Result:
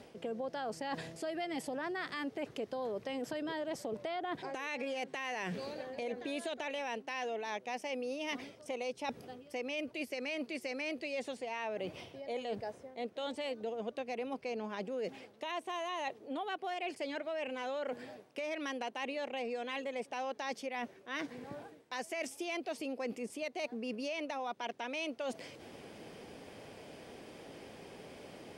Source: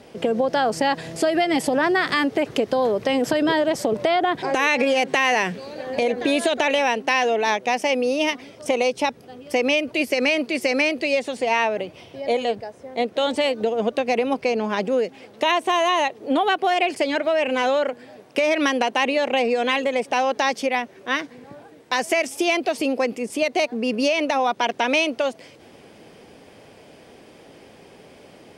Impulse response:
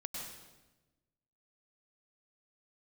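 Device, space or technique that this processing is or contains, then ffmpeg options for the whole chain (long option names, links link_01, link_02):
compression on the reversed sound: -af "areverse,acompressor=threshold=-33dB:ratio=6,areverse,volume=-4dB"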